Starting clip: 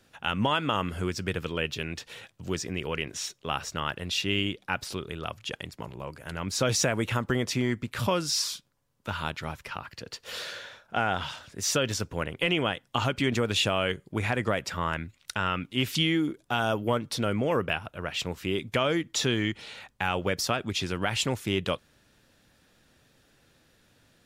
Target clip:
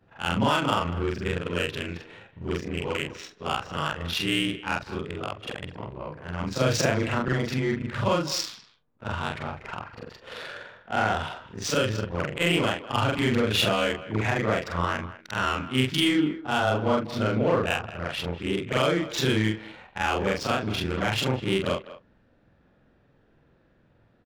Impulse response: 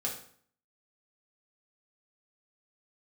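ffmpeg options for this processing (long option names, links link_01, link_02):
-filter_complex "[0:a]afftfilt=real='re':imag='-im':win_size=4096:overlap=0.75,adynamicsmooth=sensitivity=6:basefreq=1500,asplit=2[link_01][link_02];[link_02]adelay=200,highpass=300,lowpass=3400,asoftclip=type=hard:threshold=-23.5dB,volume=-15dB[link_03];[link_01][link_03]amix=inputs=2:normalize=0,volume=7.5dB"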